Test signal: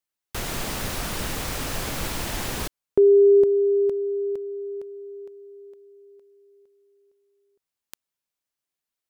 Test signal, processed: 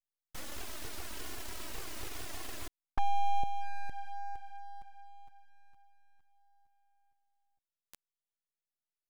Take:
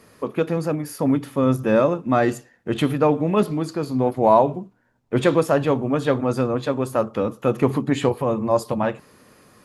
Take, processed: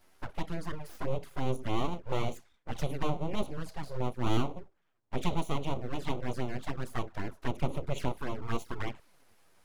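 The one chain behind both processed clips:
full-wave rectification
flanger swept by the level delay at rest 11.6 ms, full sweep at −16.5 dBFS
level −8.5 dB

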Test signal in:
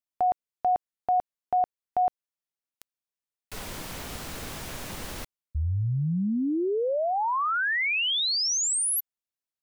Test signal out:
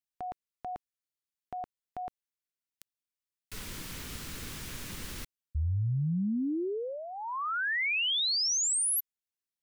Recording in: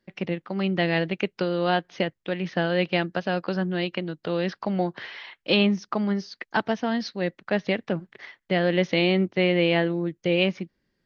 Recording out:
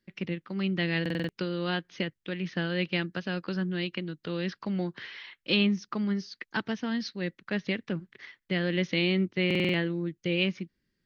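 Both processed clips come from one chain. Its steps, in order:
parametric band 700 Hz −12.5 dB 1.1 octaves
buffer that repeats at 0:01.01/0:09.46, samples 2,048, times 5
level −2.5 dB

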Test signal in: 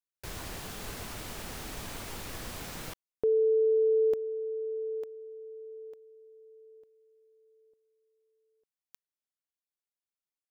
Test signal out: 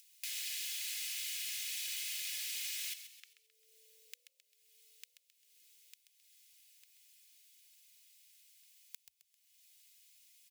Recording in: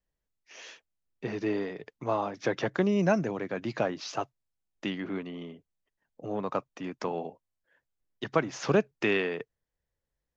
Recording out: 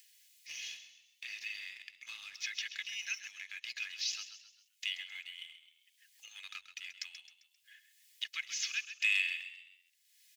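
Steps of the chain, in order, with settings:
Butterworth high-pass 2,200 Hz 36 dB per octave
comb filter 2.4 ms, depth 50%
leveller curve on the samples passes 1
upward compression, threshold −40 dBFS
echo with shifted repeats 132 ms, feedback 43%, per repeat +41 Hz, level −11 dB

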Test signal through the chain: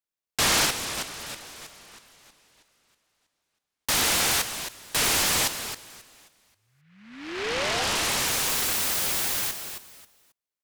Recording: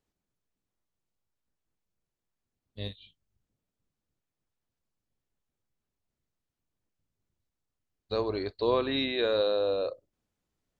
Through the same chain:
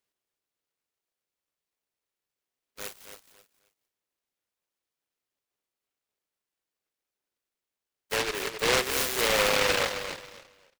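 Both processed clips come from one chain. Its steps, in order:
high-pass filter 420 Hz 24 dB per octave
on a send: repeating echo 269 ms, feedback 24%, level −8.5 dB
on the sum: short delay modulated by noise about 1,800 Hz, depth 0.33 ms
level +3 dB

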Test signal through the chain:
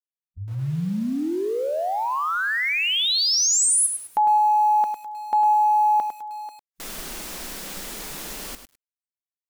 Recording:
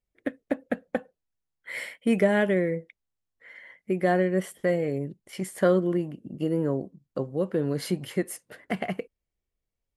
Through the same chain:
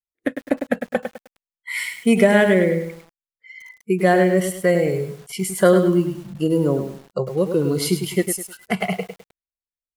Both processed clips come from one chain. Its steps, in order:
high-shelf EQ 3,800 Hz +7 dB
noise reduction from a noise print of the clip's start 28 dB
feedback echo at a low word length 103 ms, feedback 35%, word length 8 bits, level −7.5 dB
level +7 dB

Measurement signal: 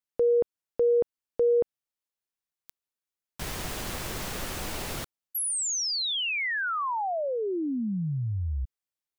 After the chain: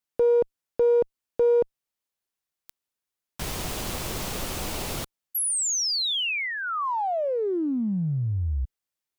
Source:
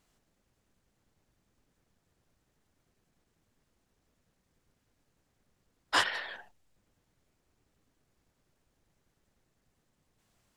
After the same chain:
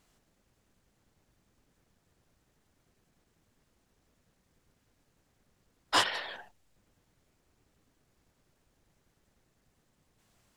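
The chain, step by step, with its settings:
dynamic equaliser 1,700 Hz, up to −6 dB, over −47 dBFS, Q 2
in parallel at −6 dB: asymmetric clip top −28 dBFS

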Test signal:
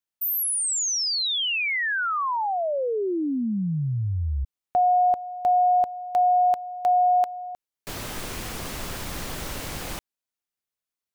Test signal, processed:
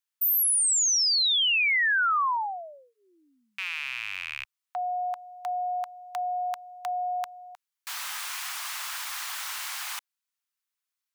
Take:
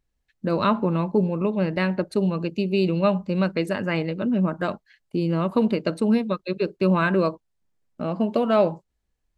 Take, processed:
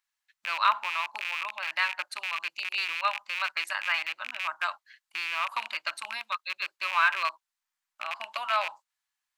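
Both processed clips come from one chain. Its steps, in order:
loose part that buzzes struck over −27 dBFS, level −22 dBFS
inverse Chebyshev high-pass filter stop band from 480 Hz, stop band 40 dB
level +2 dB

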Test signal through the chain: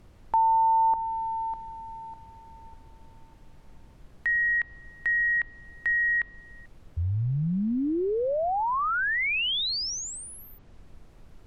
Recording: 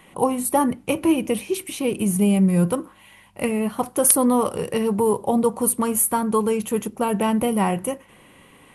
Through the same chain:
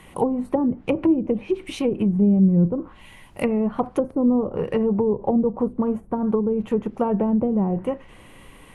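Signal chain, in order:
background noise brown −50 dBFS
treble cut that deepens with the level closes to 420 Hz, closed at −16.5 dBFS
level +1.5 dB

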